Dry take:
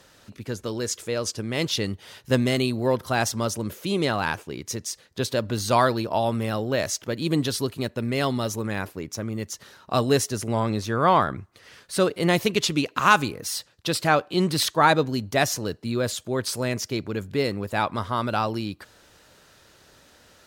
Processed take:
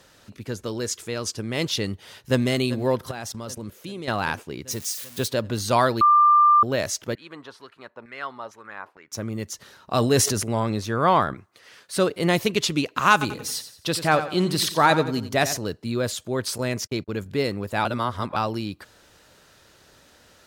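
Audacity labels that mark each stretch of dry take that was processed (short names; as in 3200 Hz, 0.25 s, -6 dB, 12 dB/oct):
0.900000	1.380000	bell 540 Hz -10.5 dB 0.26 oct
1.930000	2.440000	echo throw 0.39 s, feedback 75%, level -14 dB
3.110000	4.080000	level quantiser steps of 17 dB
4.710000	5.280000	switching spikes of -27.5 dBFS
6.010000	6.630000	bleep 1190 Hz -12 dBFS
7.150000	9.120000	LFO band-pass saw down 2.2 Hz 860–1800 Hz
9.950000	10.430000	sustainer at most 38 dB/s
11.340000	11.940000	HPF 330 Hz 6 dB/oct
13.120000	15.570000	feedback echo 89 ms, feedback 38%, level -11.5 dB
16.580000	17.260000	gate -36 dBFS, range -44 dB
17.850000	18.360000	reverse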